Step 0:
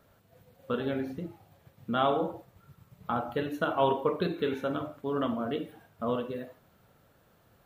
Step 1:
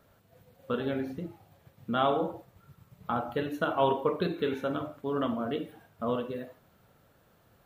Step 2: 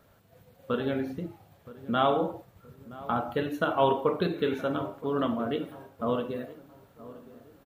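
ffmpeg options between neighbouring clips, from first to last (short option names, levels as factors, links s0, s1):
-af anull
-filter_complex "[0:a]asplit=2[s0][s1];[s1]adelay=971,lowpass=f=1200:p=1,volume=0.141,asplit=2[s2][s3];[s3]adelay=971,lowpass=f=1200:p=1,volume=0.43,asplit=2[s4][s5];[s5]adelay=971,lowpass=f=1200:p=1,volume=0.43,asplit=2[s6][s7];[s7]adelay=971,lowpass=f=1200:p=1,volume=0.43[s8];[s0][s2][s4][s6][s8]amix=inputs=5:normalize=0,volume=1.26"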